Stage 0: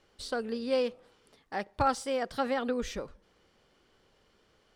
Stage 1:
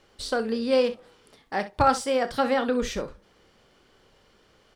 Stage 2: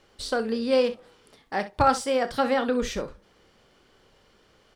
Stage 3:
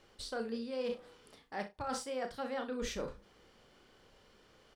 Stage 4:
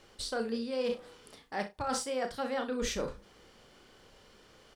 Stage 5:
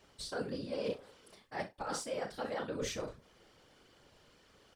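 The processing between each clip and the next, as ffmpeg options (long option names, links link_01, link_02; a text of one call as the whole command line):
ffmpeg -i in.wav -af "aecho=1:1:31|64:0.237|0.188,volume=6.5dB" out.wav
ffmpeg -i in.wav -af anull out.wav
ffmpeg -i in.wav -filter_complex "[0:a]areverse,acompressor=threshold=-31dB:ratio=16,areverse,asplit=2[link_01][link_02];[link_02]adelay=35,volume=-10dB[link_03];[link_01][link_03]amix=inputs=2:normalize=0,volume=-4dB" out.wav
ffmpeg -i in.wav -af "equalizer=frequency=8700:width_type=o:width=1.7:gain=3.5,volume=4.5dB" out.wav
ffmpeg -i in.wav -af "afftfilt=real='hypot(re,im)*cos(2*PI*random(0))':imag='hypot(re,im)*sin(2*PI*random(1))':win_size=512:overlap=0.75,volume=1dB" out.wav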